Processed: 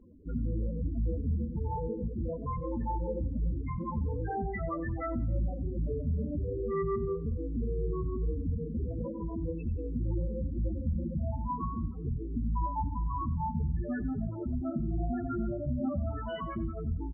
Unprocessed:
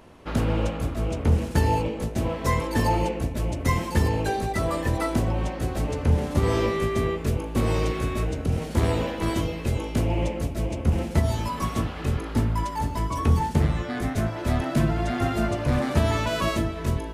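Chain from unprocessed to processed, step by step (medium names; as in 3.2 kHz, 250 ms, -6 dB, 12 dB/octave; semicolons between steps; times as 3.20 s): peaking EQ 740 Hz -3 dB 0.78 oct; peak limiter -20.5 dBFS, peak gain reduction 11 dB; loudest bins only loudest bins 8; flange 0.94 Hz, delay 3.6 ms, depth 1.8 ms, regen -45%; on a send: feedback delay 91 ms, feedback 36%, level -18.5 dB; on the sum: trim +2 dB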